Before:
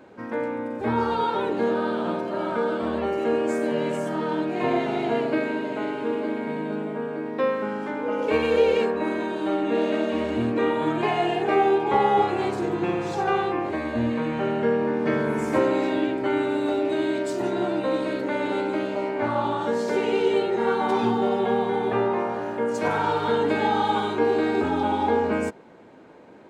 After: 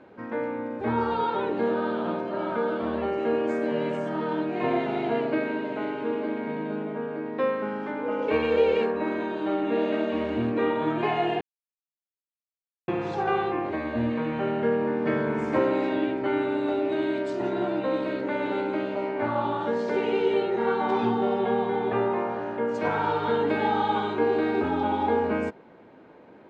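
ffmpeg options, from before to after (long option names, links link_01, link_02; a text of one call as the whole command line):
ffmpeg -i in.wav -filter_complex "[0:a]asplit=3[link_01][link_02][link_03];[link_01]atrim=end=11.41,asetpts=PTS-STARTPTS,afade=type=out:start_time=11.406:duration=0.004:curve=hsin[link_04];[link_02]atrim=start=11.41:end=12.88,asetpts=PTS-STARTPTS,volume=0[link_05];[link_03]atrim=start=12.88,asetpts=PTS-STARTPTS,afade=type=in:duration=0.004:curve=hsin[link_06];[link_04][link_05][link_06]concat=n=3:v=0:a=1,lowpass=3700,volume=-2dB" out.wav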